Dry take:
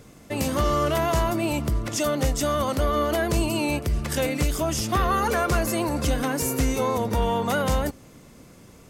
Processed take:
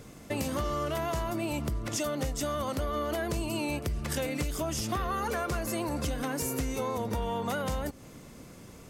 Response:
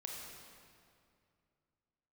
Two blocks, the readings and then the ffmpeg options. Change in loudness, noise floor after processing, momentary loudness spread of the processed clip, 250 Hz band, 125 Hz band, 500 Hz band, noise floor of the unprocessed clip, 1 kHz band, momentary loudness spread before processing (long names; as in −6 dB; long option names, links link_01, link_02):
−8.0 dB, −49 dBFS, 4 LU, −7.5 dB, −8.0 dB, −8.0 dB, −49 dBFS, −8.5 dB, 4 LU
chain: -af "acompressor=threshold=-29dB:ratio=6"